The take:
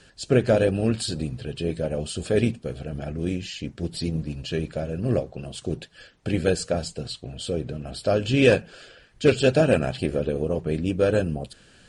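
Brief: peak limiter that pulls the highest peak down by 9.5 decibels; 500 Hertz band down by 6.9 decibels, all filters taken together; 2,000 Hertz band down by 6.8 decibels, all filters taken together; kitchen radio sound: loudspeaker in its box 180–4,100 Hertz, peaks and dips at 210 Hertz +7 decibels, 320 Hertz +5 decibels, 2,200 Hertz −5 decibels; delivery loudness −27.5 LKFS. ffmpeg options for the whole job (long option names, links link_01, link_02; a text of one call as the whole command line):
ffmpeg -i in.wav -af "equalizer=frequency=500:width_type=o:gain=-9,equalizer=frequency=2000:width_type=o:gain=-7,alimiter=limit=-18.5dB:level=0:latency=1,highpass=180,equalizer=frequency=210:width_type=q:width=4:gain=7,equalizer=frequency=320:width_type=q:width=4:gain=5,equalizer=frequency=2200:width_type=q:width=4:gain=-5,lowpass=frequency=4100:width=0.5412,lowpass=frequency=4100:width=1.3066,volume=3.5dB" out.wav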